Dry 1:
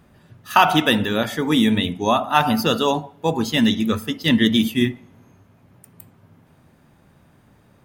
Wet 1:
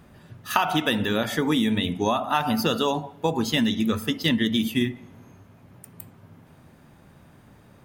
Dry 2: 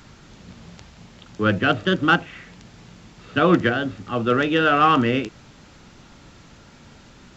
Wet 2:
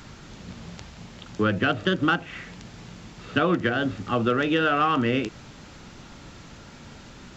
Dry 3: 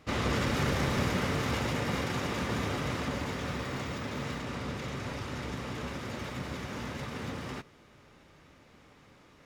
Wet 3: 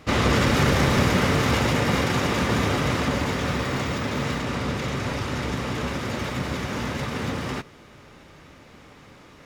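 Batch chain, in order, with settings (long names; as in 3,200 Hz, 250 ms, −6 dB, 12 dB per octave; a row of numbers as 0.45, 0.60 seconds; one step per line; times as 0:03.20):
downward compressor 5 to 1, threshold −22 dBFS
loudness normalisation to −24 LKFS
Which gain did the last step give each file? +2.0, +2.5, +9.5 decibels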